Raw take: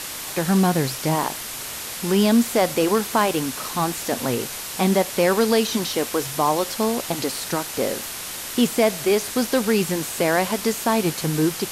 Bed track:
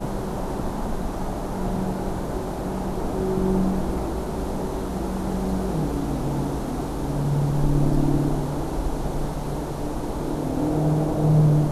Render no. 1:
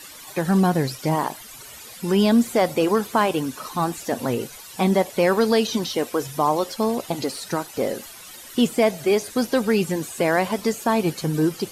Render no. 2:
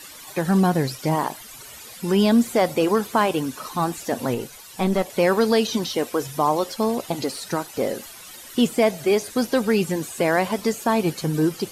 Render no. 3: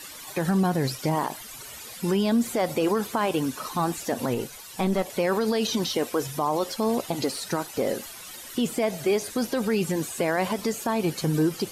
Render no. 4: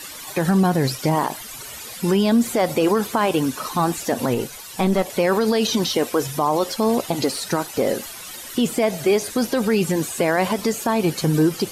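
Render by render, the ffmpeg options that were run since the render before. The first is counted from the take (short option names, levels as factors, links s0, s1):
-af "afftdn=nr=14:nf=-32"
-filter_complex "[0:a]asettb=1/sr,asplit=3[s0][s1][s2];[s0]atrim=end=4.344[s3];[s1]atrim=start=4.34:end=5.1,asetpts=PTS-STARTPTS,afade=t=in:d=0.004:c=qsin,afade=t=out:st=0.756:d=0.004:c=qsin,aeval=exprs='(tanh(4.47*val(0)+0.5)-tanh(0.5))/4.47':c=same[s4];[s2]atrim=start=5.096[s5];[s3][s4]acrossfade=d=0.004:c1=hsin:c2=qsin[s6];[s6][s5]acrossfade=d=0.004:c1=qsin:c2=hsin"
-af "alimiter=limit=0.168:level=0:latency=1:release=56"
-af "volume=1.88"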